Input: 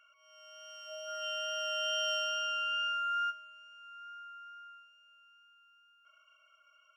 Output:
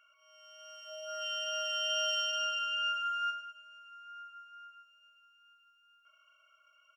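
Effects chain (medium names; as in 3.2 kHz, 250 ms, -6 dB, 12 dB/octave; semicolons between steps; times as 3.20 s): dynamic bell 4.6 kHz, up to +4 dB, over -46 dBFS, Q 0.75; on a send: feedback delay 104 ms, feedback 48%, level -10 dB; on the sum: trim -1.5 dB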